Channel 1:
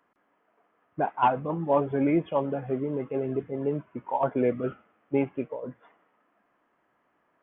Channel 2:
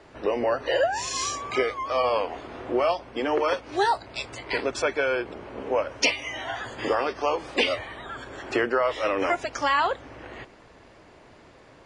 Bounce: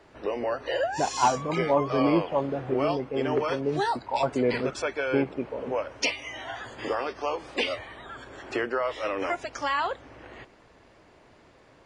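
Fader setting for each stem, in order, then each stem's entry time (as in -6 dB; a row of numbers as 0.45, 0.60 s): 0.0, -4.5 dB; 0.00, 0.00 s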